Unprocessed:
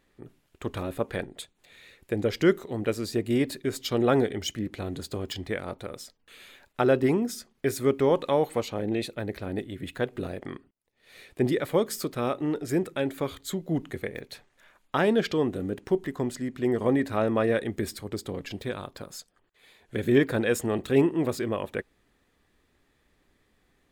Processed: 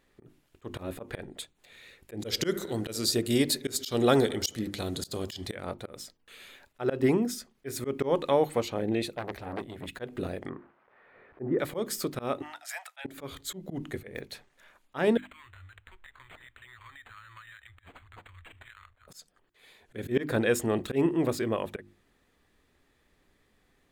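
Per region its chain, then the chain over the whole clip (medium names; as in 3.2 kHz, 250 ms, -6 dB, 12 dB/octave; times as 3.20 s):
2.20–5.55 s: high-order bell 6.9 kHz +11.5 dB 2.4 oct + bucket-brigade echo 71 ms, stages 1024, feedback 68%, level -19 dB
9.14–9.88 s: peaking EQ 750 Hz +9.5 dB 0.56 oct + transformer saturation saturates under 1.5 kHz
10.49–11.59 s: zero-crossing glitches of -30 dBFS + inverse Chebyshev low-pass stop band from 7.6 kHz, stop band 80 dB + bass shelf 70 Hz -10 dB
12.42–13.05 s: steep high-pass 670 Hz 72 dB/octave + band-stop 1.1 kHz, Q 21 + dynamic bell 2.7 kHz, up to +4 dB, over -47 dBFS, Q 0.76
15.17–19.08 s: inverse Chebyshev band-stop 140–740 Hz + compression 10:1, threshold -43 dBFS + decimation joined by straight lines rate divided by 8×
whole clip: hum notches 50/100/150/200/250/300/350 Hz; slow attack 137 ms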